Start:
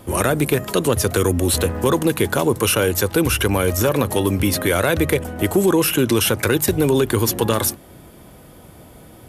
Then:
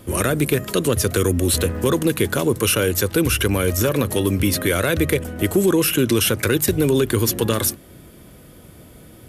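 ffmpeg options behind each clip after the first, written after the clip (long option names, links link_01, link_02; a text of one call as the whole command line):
ffmpeg -i in.wav -af "equalizer=frequency=840:width_type=o:width=0.77:gain=-8.5" out.wav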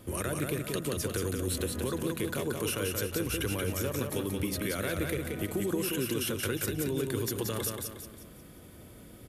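ffmpeg -i in.wav -filter_complex "[0:a]acompressor=threshold=-25dB:ratio=2.5,asplit=2[link_01][link_02];[link_02]aecho=0:1:179|358|537|716|895:0.631|0.259|0.106|0.0435|0.0178[link_03];[link_01][link_03]amix=inputs=2:normalize=0,volume=-8dB" out.wav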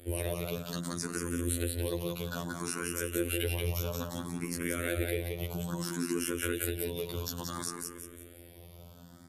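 ffmpeg -i in.wav -filter_complex "[0:a]afftfilt=real='hypot(re,im)*cos(PI*b)':imag='0':win_size=2048:overlap=0.75,asplit=2[link_01][link_02];[link_02]afreqshift=0.6[link_03];[link_01][link_03]amix=inputs=2:normalize=1,volume=4.5dB" out.wav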